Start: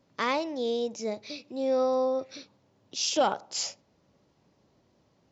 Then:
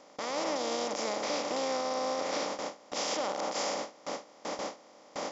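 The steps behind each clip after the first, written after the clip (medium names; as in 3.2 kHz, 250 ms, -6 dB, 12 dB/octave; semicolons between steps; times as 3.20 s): spectral levelling over time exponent 0.2; peak limiter -13.5 dBFS, peak gain reduction 10 dB; gate with hold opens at -15 dBFS; trim -9 dB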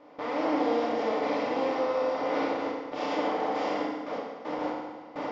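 FDN reverb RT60 1.4 s, low-frequency decay 1×, high-frequency decay 0.85×, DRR -5.5 dB; short-mantissa float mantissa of 4-bit; distance through air 380 m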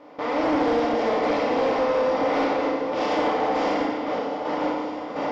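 Chebyshev shaper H 5 -23 dB, 7 -25 dB, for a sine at -15 dBFS; delay with an opening low-pass 305 ms, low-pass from 200 Hz, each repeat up 2 oct, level -6 dB; sine folder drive 4 dB, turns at -15 dBFS; trim -1.5 dB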